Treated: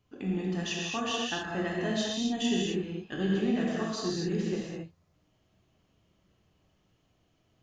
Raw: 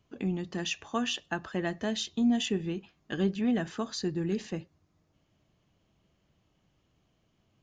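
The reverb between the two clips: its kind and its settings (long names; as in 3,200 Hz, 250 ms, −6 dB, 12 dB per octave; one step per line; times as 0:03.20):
reverb whose tail is shaped and stops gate 290 ms flat, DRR −4.5 dB
level −4 dB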